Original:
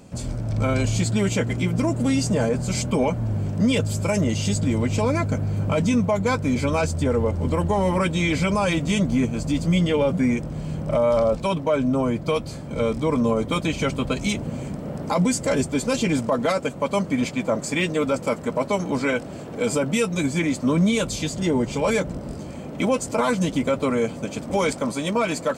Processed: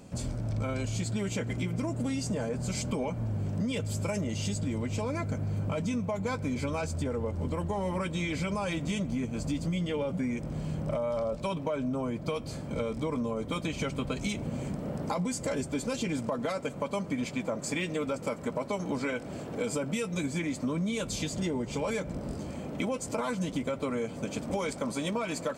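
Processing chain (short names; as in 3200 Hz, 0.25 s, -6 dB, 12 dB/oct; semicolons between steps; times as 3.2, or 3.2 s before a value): compressor, threshold -25 dBFS, peak gain reduction 9.5 dB; on a send: reverb RT60 1.4 s, pre-delay 4 ms, DRR 20 dB; on the sum: gain -3.5 dB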